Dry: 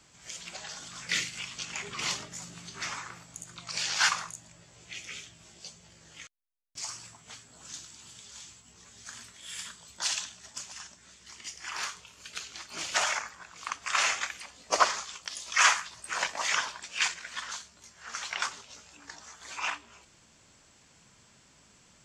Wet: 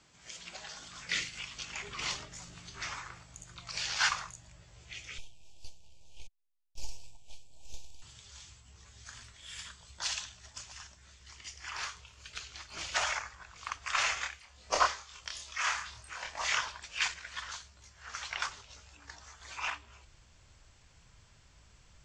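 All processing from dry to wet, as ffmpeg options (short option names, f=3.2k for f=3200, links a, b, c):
-filter_complex "[0:a]asettb=1/sr,asplit=3[a][b][c];[a]atrim=end=5.184[d];[b]atrim=start=5.18:end=8.02,asetpts=PTS-STARTPTS,afade=t=in:d=0.004:c=qsin,afade=t=out:st=2.836:d=0.004:c=qsin,lowshelf=f=370:g=-6.5,aeval=exprs='max(val(0),0)':c=same,asuperstop=centerf=1500:order=20:qfactor=1.1[e];[c]atrim=start=8.016[f];[d][e]acrossfade=d=0.004:c1=hsin:c2=qsin[g];[g][f]acrossfade=d=0.004:c1=qsin:c2=hsin,asettb=1/sr,asplit=3[h][i][j];[h]atrim=end=14.144[k];[i]atrim=start=14.14:end=16.61,asetpts=PTS-STARTPTS,afade=t=in:d=0.004:c=qsin,afade=t=out:st=2.466:d=0.004:c=qsin,tremolo=f=1.7:d=0.68,asplit=2[l][m];[m]adelay=27,volume=-3dB[n];[l][n]amix=inputs=2:normalize=0,atrim=end_sample=108927[o];[j]atrim=start=16.606[p];[k][o]acrossfade=d=0.004:c1=hsin:c2=qsin[q];[q][p]acrossfade=d=0.004:c1=qsin:c2=hsin,asubboost=boost=10.5:cutoff=67,lowpass=6.5k,volume=-3dB"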